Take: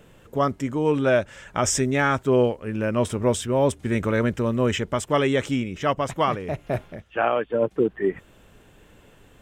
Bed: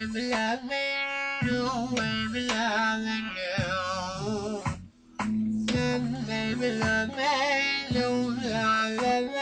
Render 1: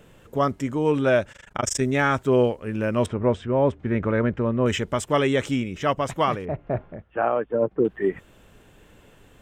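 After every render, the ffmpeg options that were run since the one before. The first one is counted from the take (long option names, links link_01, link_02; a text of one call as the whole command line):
ffmpeg -i in.wav -filter_complex "[0:a]asettb=1/sr,asplit=3[link_01][link_02][link_03];[link_01]atrim=end=1.324[link_04];[link_02]atrim=start=1.32:end=1.81,asetpts=PTS-STARTPTS,afade=type=in:duration=0.004:curve=qsin,afade=type=out:start_time=0.486:duration=0.004:curve=qsin,tremolo=f=25:d=1[link_05];[link_03]atrim=start=1.806[link_06];[link_04][link_05]acrossfade=duration=0.004:curve1=hsin:curve2=qsin[link_07];[link_07][link_06]acrossfade=duration=0.004:curve1=qsin:curve2=hsin,asettb=1/sr,asplit=3[link_08][link_09][link_10];[link_08]atrim=end=3.064[link_11];[link_09]atrim=start=3.06:end=4.66,asetpts=PTS-STARTPTS,afade=type=in:duration=0.004:curve=qsin,afade=type=out:start_time=1.596:duration=0.004:curve=qsin,lowpass=2000[link_12];[link_10]atrim=start=4.656[link_13];[link_11][link_12]acrossfade=duration=0.004:curve1=hsin:curve2=qsin[link_14];[link_14][link_13]acrossfade=duration=0.004:curve1=qsin:curve2=hsin,asettb=1/sr,asplit=3[link_15][link_16][link_17];[link_15]atrim=end=6.454[link_18];[link_16]atrim=start=6.45:end=7.85,asetpts=PTS-STARTPTS,afade=type=in:duration=0.004:curve=qsin,afade=type=out:start_time=1.396:duration=0.004:curve=qsin,lowpass=1400[link_19];[link_17]atrim=start=7.846[link_20];[link_18][link_19]acrossfade=duration=0.004:curve1=hsin:curve2=qsin[link_21];[link_21][link_20]acrossfade=duration=0.004:curve1=qsin:curve2=hsin" out.wav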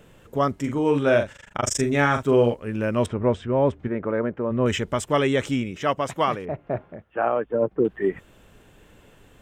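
ffmpeg -i in.wav -filter_complex "[0:a]asettb=1/sr,asplit=3[link_01][link_02][link_03];[link_01]atrim=end=0.584[link_04];[link_02]atrim=start=0.58:end=2.54,asetpts=PTS-STARTPTS,afade=type=in:duration=0.004:curve=qsin,afade=type=out:start_time=1.956:duration=0.004:curve=qsin,asplit=2[link_05][link_06];[link_06]adelay=42,volume=-7dB[link_07];[link_05][link_07]amix=inputs=2:normalize=0,atrim=end_sample=86436[link_08];[link_03]atrim=start=2.536[link_09];[link_04][link_08]acrossfade=duration=0.004:curve1=hsin:curve2=qsin[link_10];[link_10][link_09]acrossfade=duration=0.004:curve1=qsin:curve2=hsin,asplit=3[link_11][link_12][link_13];[link_11]afade=type=out:start_time=3.87:duration=0.02[link_14];[link_12]bandpass=frequency=600:width_type=q:width=0.58,afade=type=in:start_time=3.87:duration=0.02,afade=type=out:start_time=4.5:duration=0.02[link_15];[link_13]afade=type=in:start_time=4.5:duration=0.02[link_16];[link_14][link_15][link_16]amix=inputs=3:normalize=0,asettb=1/sr,asplit=3[link_17][link_18][link_19];[link_17]atrim=end=5.714[link_20];[link_18]atrim=start=5.71:end=7.26,asetpts=PTS-STARTPTS,afade=type=in:duration=0.004:curve=qsin,afade=type=out:start_time=1.546:duration=0.004:curve=qsin,highpass=frequency=150:poles=1[link_21];[link_19]atrim=start=7.256[link_22];[link_20][link_21]acrossfade=duration=0.004:curve1=hsin:curve2=qsin[link_23];[link_23][link_22]acrossfade=duration=0.004:curve1=qsin:curve2=hsin" out.wav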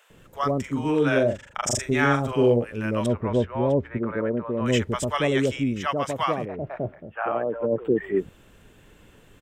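ffmpeg -i in.wav -filter_complex "[0:a]acrossover=split=720[link_01][link_02];[link_01]adelay=100[link_03];[link_03][link_02]amix=inputs=2:normalize=0" out.wav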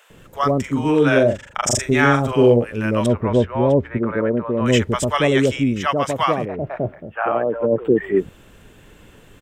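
ffmpeg -i in.wav -af "volume=6dB,alimiter=limit=-2dB:level=0:latency=1" out.wav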